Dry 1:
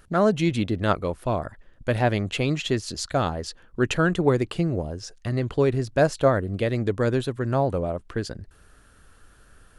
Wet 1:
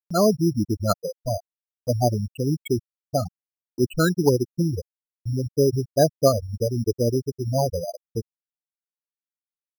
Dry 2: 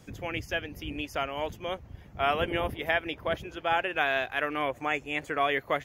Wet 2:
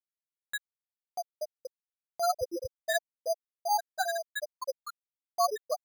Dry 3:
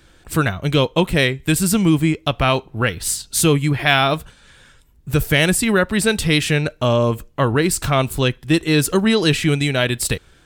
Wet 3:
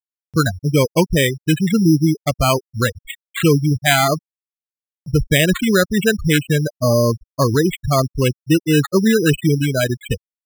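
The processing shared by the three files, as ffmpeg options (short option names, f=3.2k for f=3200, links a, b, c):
-af "afftfilt=real='re*gte(hypot(re,im),0.316)':imag='im*gte(hypot(re,im),0.316)':win_size=1024:overlap=0.75,acompressor=mode=upward:threshold=-33dB:ratio=2.5,acrusher=samples=8:mix=1:aa=0.000001,volume=2dB"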